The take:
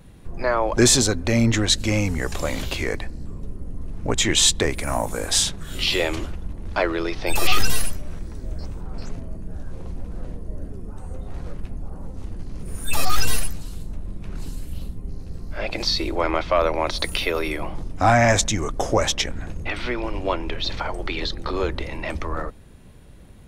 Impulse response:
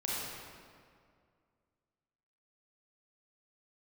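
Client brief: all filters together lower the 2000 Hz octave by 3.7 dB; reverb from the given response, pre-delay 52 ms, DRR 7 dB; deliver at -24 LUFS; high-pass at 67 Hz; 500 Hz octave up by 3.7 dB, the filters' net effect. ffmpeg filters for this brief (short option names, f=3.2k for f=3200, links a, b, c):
-filter_complex "[0:a]highpass=67,equalizer=f=500:t=o:g=5,equalizer=f=2k:t=o:g=-5,asplit=2[a][b];[1:a]atrim=start_sample=2205,adelay=52[c];[b][c]afir=irnorm=-1:irlink=0,volume=-12.5dB[d];[a][d]amix=inputs=2:normalize=0,volume=-2.5dB"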